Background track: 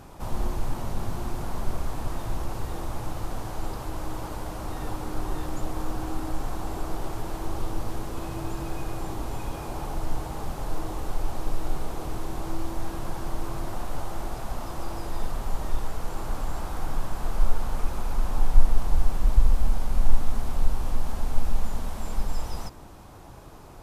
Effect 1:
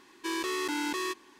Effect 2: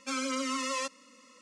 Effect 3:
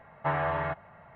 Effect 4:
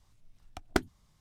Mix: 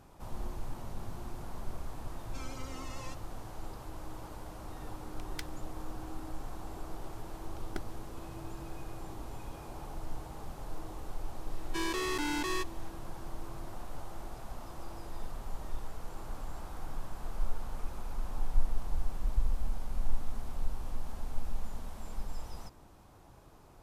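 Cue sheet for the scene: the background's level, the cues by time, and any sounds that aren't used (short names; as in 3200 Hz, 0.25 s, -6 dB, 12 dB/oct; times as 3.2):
background track -11 dB
2.27 add 2 -15 dB
4.63 add 4 -5 dB + inverse Chebyshev high-pass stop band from 970 Hz
7 add 4 -14.5 dB
11.5 add 1 -2 dB
not used: 3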